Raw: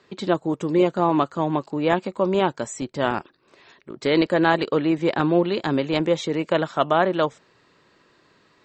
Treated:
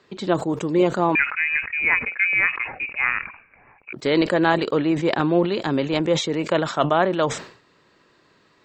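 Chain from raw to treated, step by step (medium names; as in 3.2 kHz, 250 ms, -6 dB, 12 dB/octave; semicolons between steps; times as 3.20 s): 1.15–3.93 s: frequency inversion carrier 2.7 kHz; decay stretcher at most 110 dB/s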